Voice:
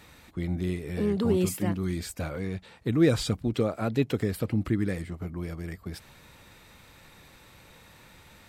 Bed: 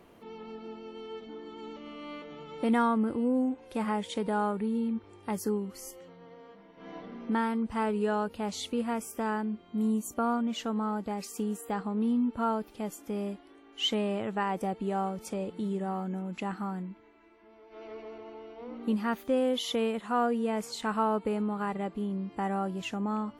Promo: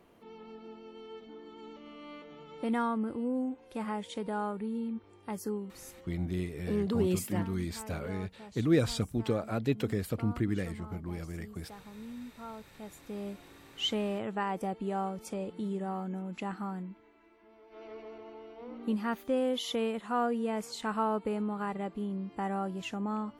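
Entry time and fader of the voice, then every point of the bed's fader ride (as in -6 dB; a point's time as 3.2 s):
5.70 s, -4.0 dB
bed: 6.09 s -5 dB
6.4 s -16.5 dB
12.4 s -16.5 dB
13.43 s -2.5 dB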